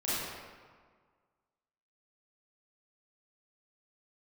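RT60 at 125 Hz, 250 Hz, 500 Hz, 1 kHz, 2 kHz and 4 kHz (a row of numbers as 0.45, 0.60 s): 1.7, 1.7, 1.6, 1.7, 1.4, 1.0 s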